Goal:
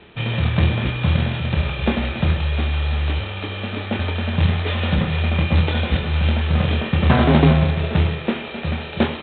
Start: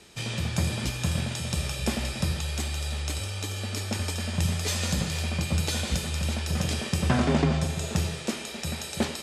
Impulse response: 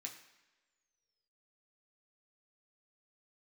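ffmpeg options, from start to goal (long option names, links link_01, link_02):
-filter_complex "[0:a]aemphasis=mode=reproduction:type=50fm,aresample=8000,acrusher=bits=3:mode=log:mix=0:aa=0.000001,aresample=44100,asplit=2[link_01][link_02];[link_02]adelay=26,volume=-7dB[link_03];[link_01][link_03]amix=inputs=2:normalize=0,volume=7.5dB"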